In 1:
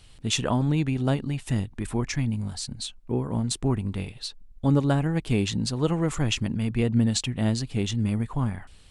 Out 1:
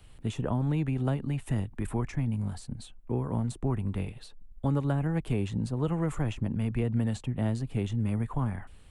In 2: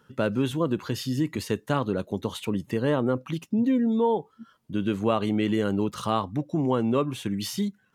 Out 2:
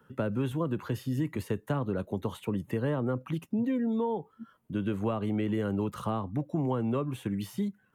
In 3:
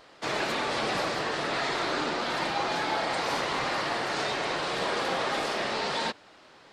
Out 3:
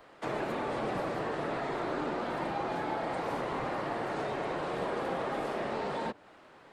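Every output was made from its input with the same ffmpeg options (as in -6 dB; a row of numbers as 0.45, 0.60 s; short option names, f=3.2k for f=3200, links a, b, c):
-filter_complex "[0:a]acrossover=split=170|420|970[a][b][c][d];[a]acompressor=threshold=-28dB:ratio=4[e];[b]acompressor=threshold=-36dB:ratio=4[f];[c]acompressor=threshold=-35dB:ratio=4[g];[d]acompressor=threshold=-39dB:ratio=4[h];[e][f][g][h]amix=inputs=4:normalize=0,equalizer=f=5k:w=0.81:g=-12"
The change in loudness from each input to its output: -4.5, -5.0, -5.5 LU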